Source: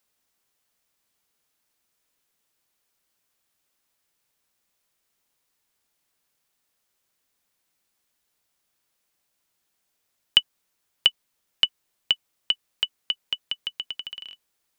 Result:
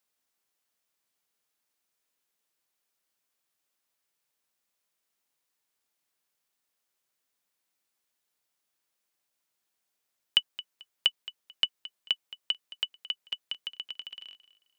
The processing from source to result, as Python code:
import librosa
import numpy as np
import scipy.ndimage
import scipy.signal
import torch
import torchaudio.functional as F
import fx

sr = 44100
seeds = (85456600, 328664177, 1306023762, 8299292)

p1 = fx.low_shelf(x, sr, hz=130.0, db=-10.0)
p2 = p1 + fx.echo_feedback(p1, sr, ms=220, feedback_pct=26, wet_db=-17, dry=0)
y = F.gain(torch.from_numpy(p2), -6.0).numpy()